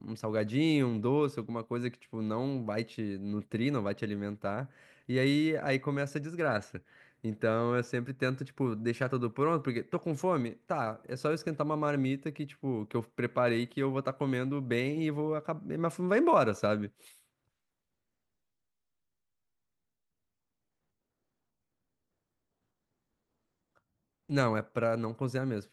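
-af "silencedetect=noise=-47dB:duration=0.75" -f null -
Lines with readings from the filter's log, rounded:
silence_start: 17.08
silence_end: 24.29 | silence_duration: 7.21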